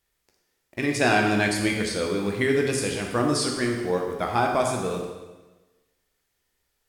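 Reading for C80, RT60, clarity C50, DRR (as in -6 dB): 5.5 dB, 1.2 s, 3.5 dB, 1.0 dB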